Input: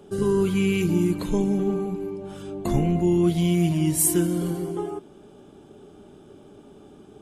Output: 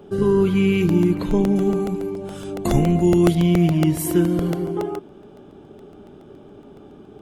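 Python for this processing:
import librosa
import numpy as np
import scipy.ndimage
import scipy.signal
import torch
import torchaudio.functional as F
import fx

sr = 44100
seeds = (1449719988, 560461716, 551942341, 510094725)

y = fx.peak_eq(x, sr, hz=8800.0, db=fx.steps((0.0, -12.5), (1.56, 3.0), (3.35, -14.5)), octaves=1.5)
y = fx.buffer_crackle(y, sr, first_s=0.89, period_s=0.14, block=64, kind='repeat')
y = y * 10.0 ** (4.5 / 20.0)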